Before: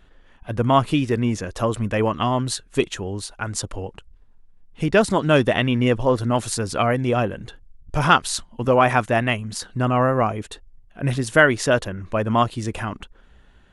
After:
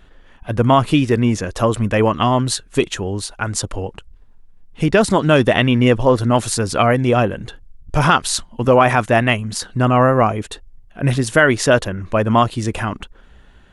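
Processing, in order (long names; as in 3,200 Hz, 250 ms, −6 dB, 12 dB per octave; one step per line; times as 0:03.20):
boost into a limiter +6.5 dB
level −1 dB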